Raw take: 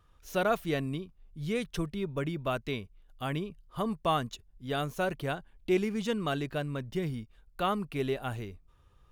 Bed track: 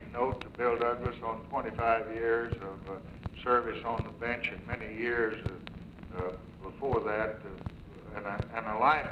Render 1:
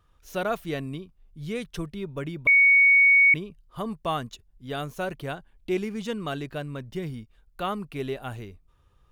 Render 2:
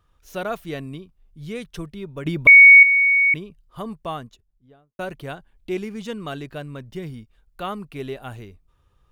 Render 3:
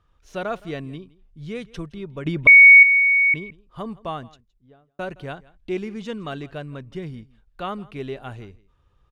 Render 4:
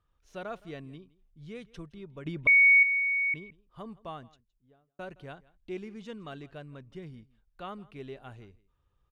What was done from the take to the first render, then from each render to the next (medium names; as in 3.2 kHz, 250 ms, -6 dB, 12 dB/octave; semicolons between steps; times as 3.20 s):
2.47–3.34 s: bleep 2.23 kHz -13.5 dBFS
2.26–2.83 s: gain +9.5 dB; 3.81–4.99 s: studio fade out
distance through air 65 m; delay 166 ms -22 dB
trim -11 dB